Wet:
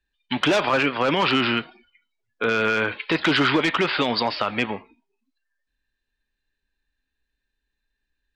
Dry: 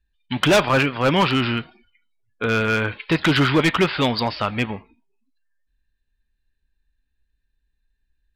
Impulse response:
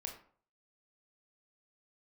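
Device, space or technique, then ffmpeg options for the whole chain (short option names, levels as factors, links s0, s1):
DJ mixer with the lows and highs turned down: -filter_complex "[0:a]acrossover=split=230 7300:gain=0.224 1 0.224[s0][s1][s2];[s0][s1][s2]amix=inputs=3:normalize=0,alimiter=limit=0.211:level=0:latency=1:release=58,volume=1.41"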